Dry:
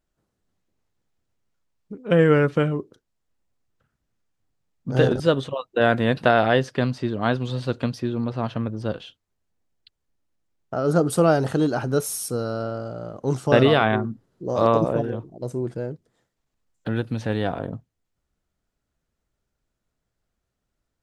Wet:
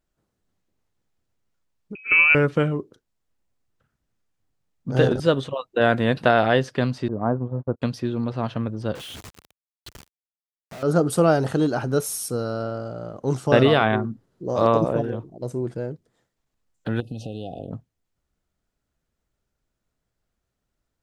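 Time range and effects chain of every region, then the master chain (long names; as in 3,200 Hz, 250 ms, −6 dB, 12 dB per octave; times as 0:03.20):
0:01.95–0:02.35: voice inversion scrambler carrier 2,800 Hz + parametric band 810 Hz −10 dB 0.58 octaves
0:07.08–0:07.82: low-pass filter 1,100 Hz 24 dB per octave + noise gate −30 dBFS, range −39 dB
0:08.95–0:10.83: sign of each sample alone + high-pass filter 51 Hz + high-shelf EQ 9,000 Hz −5.5 dB
0:17.00–0:17.71: downward compressor 5 to 1, threshold −28 dBFS + linear-phase brick-wall band-stop 830–2,500 Hz
whole clip: no processing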